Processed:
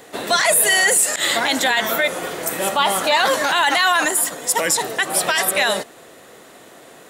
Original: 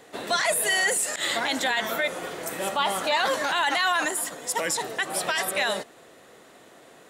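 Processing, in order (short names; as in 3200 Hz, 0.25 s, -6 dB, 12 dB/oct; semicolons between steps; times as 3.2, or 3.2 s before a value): high shelf 11000 Hz +8.5 dB; gain +7 dB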